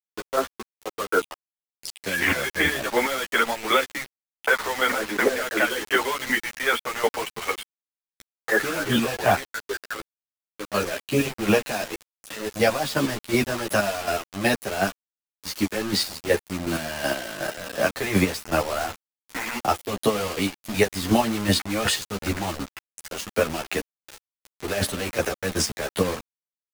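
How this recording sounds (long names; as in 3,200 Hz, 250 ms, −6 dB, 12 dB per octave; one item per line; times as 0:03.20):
chopped level 2.7 Hz, depth 65%, duty 25%
a quantiser's noise floor 6 bits, dither none
a shimmering, thickened sound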